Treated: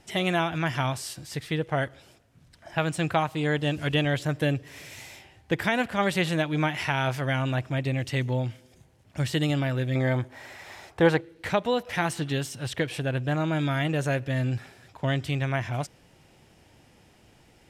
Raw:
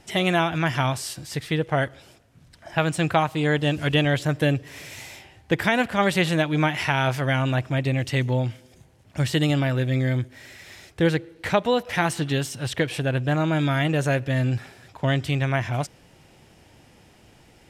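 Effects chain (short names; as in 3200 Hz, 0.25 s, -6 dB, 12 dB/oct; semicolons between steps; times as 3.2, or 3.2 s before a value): 9.95–11.21 bell 880 Hz +14 dB 1.5 oct; gain -4 dB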